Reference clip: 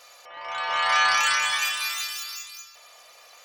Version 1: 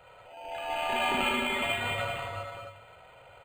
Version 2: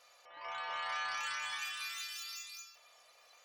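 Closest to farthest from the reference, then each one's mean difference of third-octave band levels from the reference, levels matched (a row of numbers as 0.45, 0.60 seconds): 2, 1; 2.5, 12.5 decibels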